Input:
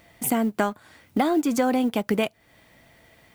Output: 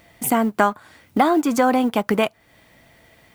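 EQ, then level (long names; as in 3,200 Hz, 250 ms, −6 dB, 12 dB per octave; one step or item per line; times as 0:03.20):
dynamic equaliser 1,100 Hz, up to +8 dB, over −40 dBFS, Q 1.1
+2.5 dB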